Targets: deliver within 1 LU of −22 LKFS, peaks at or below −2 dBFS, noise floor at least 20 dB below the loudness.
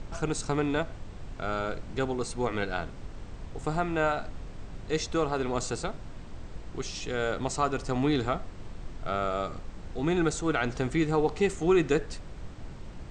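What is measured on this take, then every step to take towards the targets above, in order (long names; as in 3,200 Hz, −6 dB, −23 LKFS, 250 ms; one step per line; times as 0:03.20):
background noise floor −43 dBFS; target noise floor −50 dBFS; integrated loudness −30.0 LKFS; sample peak −13.5 dBFS; target loudness −22.0 LKFS
→ noise reduction from a noise print 7 dB
level +8 dB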